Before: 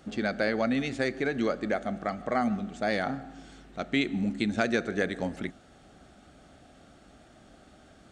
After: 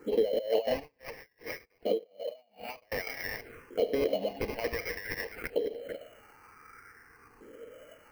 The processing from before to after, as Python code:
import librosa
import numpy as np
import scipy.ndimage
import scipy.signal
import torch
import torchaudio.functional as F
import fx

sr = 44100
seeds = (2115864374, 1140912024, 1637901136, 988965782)

y = fx.reverse_delay(x, sr, ms=284, wet_db=-8.5)
y = fx.notch_comb(y, sr, f0_hz=380.0)
y = y + 10.0 ** (-22.0 / 20.0) * np.pad(y, (int(292 * sr / 1000.0), 0))[:len(y)]
y = fx.filter_lfo_highpass(y, sr, shape='saw_up', hz=0.54, low_hz=360.0, high_hz=2800.0, q=5.3)
y = fx.sample_hold(y, sr, seeds[0], rate_hz=3600.0, jitter_pct=0)
y = fx.high_shelf(y, sr, hz=3500.0, db=-7.0)
y = fx.over_compress(y, sr, threshold_db=-31.0, ratio=-1.0)
y = fx.peak_eq(y, sr, hz=470.0, db=12.0, octaves=0.4)
y = fx.env_phaser(y, sr, low_hz=560.0, high_hz=1400.0, full_db=-28.0)
y = fx.tremolo_db(y, sr, hz=2.6, depth_db=36, at=(0.75, 2.92))